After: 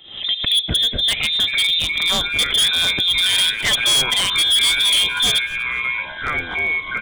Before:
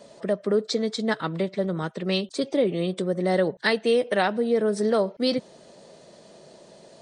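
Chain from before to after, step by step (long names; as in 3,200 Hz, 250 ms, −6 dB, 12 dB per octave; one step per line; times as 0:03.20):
on a send at −16 dB: convolution reverb RT60 0.40 s, pre-delay 3 ms
on the sum: voice inversion scrambler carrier 3,800 Hz
tilt shelving filter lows +5 dB
automatic gain control gain up to 7 dB
in parallel at +1 dB: brickwall limiter −17 dBFS, peak gain reduction 11 dB
on the sum: delay with pitch and tempo change per echo 778 ms, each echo −7 semitones, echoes 3, each echo −6 dB
wave folding −10.5 dBFS
high-shelf EQ 2,700 Hz +7 dB
echo with shifted repeats 243 ms, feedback 31%, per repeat −110 Hz, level −23 dB
background raised ahead of every attack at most 98 dB per second
level −4.5 dB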